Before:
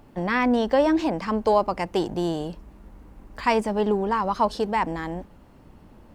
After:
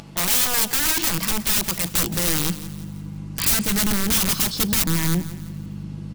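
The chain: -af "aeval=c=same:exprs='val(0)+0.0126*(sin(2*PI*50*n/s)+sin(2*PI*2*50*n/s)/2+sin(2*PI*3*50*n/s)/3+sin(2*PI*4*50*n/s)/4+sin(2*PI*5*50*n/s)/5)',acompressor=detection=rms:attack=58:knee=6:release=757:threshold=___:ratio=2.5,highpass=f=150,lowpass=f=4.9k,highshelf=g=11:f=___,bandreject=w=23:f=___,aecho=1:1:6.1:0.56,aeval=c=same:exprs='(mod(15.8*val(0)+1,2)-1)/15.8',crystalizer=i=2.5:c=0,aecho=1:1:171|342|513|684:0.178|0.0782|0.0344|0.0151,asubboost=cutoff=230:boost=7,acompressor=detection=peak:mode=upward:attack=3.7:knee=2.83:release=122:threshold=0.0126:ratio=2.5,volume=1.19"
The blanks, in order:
0.0501, 2.8k, 1.8k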